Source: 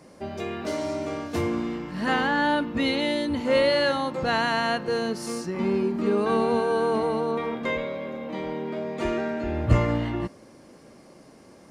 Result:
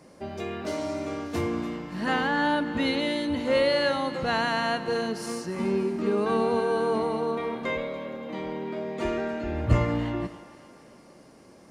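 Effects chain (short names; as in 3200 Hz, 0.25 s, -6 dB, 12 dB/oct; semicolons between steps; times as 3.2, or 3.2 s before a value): split-band echo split 680 Hz, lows 92 ms, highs 0.288 s, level -14 dB; gain -2 dB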